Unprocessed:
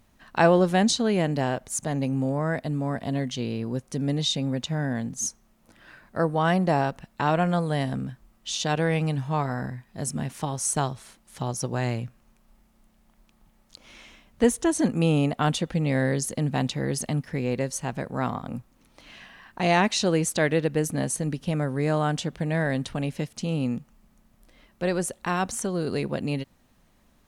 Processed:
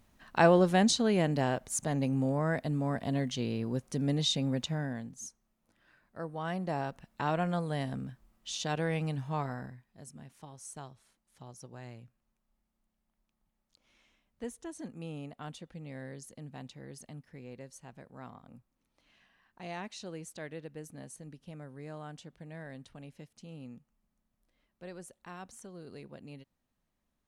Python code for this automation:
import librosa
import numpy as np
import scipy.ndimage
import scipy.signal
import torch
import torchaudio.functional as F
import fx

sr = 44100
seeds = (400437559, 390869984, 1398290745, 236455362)

y = fx.gain(x, sr, db=fx.line((4.64, -4.0), (5.27, -16.0), (6.18, -16.0), (7.16, -8.0), (9.46, -8.0), (10.06, -20.0)))